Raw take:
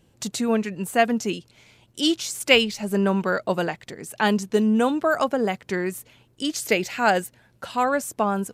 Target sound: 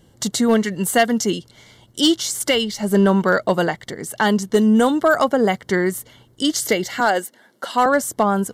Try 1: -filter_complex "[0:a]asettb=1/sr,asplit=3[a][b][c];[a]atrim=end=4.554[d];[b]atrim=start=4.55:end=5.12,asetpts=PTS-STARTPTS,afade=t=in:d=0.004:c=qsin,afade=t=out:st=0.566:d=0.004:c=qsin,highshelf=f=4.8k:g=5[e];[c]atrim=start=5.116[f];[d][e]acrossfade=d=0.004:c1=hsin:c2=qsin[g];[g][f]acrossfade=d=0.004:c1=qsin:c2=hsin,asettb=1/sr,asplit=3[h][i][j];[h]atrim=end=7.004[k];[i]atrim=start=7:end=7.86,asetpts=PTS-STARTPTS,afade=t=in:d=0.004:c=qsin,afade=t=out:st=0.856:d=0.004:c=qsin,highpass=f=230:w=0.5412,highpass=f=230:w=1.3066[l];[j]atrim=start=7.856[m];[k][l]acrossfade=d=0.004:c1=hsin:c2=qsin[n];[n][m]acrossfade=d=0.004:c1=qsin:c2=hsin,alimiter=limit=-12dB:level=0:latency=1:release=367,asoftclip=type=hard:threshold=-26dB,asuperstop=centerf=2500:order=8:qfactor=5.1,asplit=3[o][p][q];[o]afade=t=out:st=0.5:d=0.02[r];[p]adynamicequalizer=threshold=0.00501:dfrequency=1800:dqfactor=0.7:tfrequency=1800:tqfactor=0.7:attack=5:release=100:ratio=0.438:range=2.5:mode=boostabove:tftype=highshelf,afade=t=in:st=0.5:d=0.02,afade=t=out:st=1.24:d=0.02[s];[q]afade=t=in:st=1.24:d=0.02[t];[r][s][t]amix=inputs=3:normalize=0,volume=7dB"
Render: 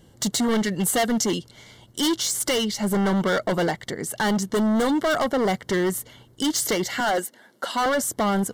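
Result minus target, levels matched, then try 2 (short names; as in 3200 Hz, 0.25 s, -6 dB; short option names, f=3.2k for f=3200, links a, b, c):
hard clip: distortion +20 dB
-filter_complex "[0:a]asettb=1/sr,asplit=3[a][b][c];[a]atrim=end=4.554[d];[b]atrim=start=4.55:end=5.12,asetpts=PTS-STARTPTS,afade=t=in:d=0.004:c=qsin,afade=t=out:st=0.566:d=0.004:c=qsin,highshelf=f=4.8k:g=5[e];[c]atrim=start=5.116[f];[d][e]acrossfade=d=0.004:c1=hsin:c2=qsin[g];[g][f]acrossfade=d=0.004:c1=qsin:c2=hsin,asettb=1/sr,asplit=3[h][i][j];[h]atrim=end=7.004[k];[i]atrim=start=7:end=7.86,asetpts=PTS-STARTPTS,afade=t=in:d=0.004:c=qsin,afade=t=out:st=0.856:d=0.004:c=qsin,highpass=f=230:w=0.5412,highpass=f=230:w=1.3066[l];[j]atrim=start=7.856[m];[k][l]acrossfade=d=0.004:c1=hsin:c2=qsin[n];[n][m]acrossfade=d=0.004:c1=qsin:c2=hsin,alimiter=limit=-12dB:level=0:latency=1:release=367,asoftclip=type=hard:threshold=-14.5dB,asuperstop=centerf=2500:order=8:qfactor=5.1,asplit=3[o][p][q];[o]afade=t=out:st=0.5:d=0.02[r];[p]adynamicequalizer=threshold=0.00501:dfrequency=1800:dqfactor=0.7:tfrequency=1800:tqfactor=0.7:attack=5:release=100:ratio=0.438:range=2.5:mode=boostabove:tftype=highshelf,afade=t=in:st=0.5:d=0.02,afade=t=out:st=1.24:d=0.02[s];[q]afade=t=in:st=1.24:d=0.02[t];[r][s][t]amix=inputs=3:normalize=0,volume=7dB"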